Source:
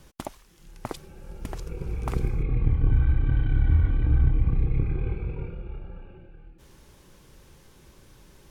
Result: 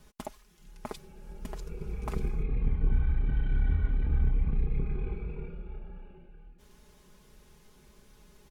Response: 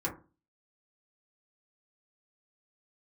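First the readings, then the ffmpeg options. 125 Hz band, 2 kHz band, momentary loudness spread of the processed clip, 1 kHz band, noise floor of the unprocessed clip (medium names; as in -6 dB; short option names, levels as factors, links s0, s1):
-8.0 dB, -5.0 dB, 17 LU, -5.0 dB, -55 dBFS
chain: -af "aecho=1:1:4.8:0.69,volume=0.473"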